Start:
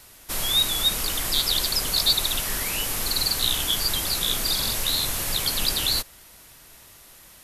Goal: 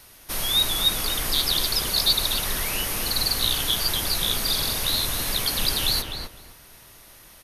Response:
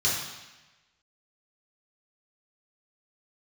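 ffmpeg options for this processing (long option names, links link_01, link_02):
-filter_complex "[0:a]bandreject=frequency=7500:width=5.3,asplit=2[link_01][link_02];[link_02]adelay=254,lowpass=frequency=1900:poles=1,volume=-3.5dB,asplit=2[link_03][link_04];[link_04]adelay=254,lowpass=frequency=1900:poles=1,volume=0.22,asplit=2[link_05][link_06];[link_06]adelay=254,lowpass=frequency=1900:poles=1,volume=0.22[link_07];[link_03][link_05][link_07]amix=inputs=3:normalize=0[link_08];[link_01][link_08]amix=inputs=2:normalize=0"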